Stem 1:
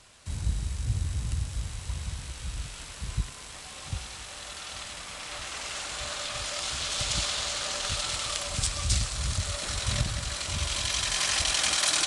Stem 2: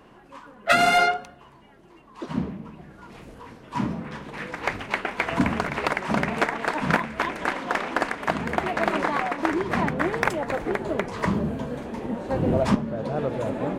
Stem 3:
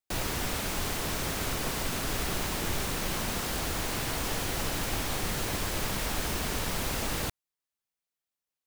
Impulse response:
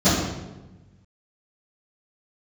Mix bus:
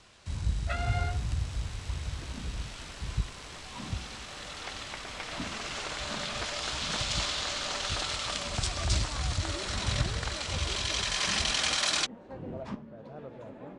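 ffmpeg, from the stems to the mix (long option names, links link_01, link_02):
-filter_complex "[0:a]volume=-1dB[link_01];[1:a]volume=-17.5dB[link_02];[2:a]alimiter=level_in=5dB:limit=-24dB:level=0:latency=1,volume=-5dB,adelay=900,volume=-11.5dB[link_03];[link_01][link_02][link_03]amix=inputs=3:normalize=0,lowpass=6000"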